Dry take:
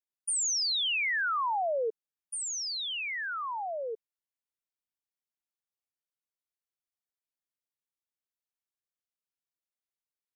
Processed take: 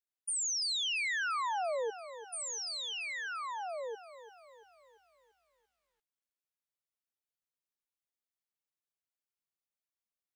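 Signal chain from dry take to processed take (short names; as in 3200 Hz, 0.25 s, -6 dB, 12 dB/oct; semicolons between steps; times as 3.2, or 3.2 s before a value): lo-fi delay 0.342 s, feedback 55%, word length 11-bit, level -13.5 dB; gain -4.5 dB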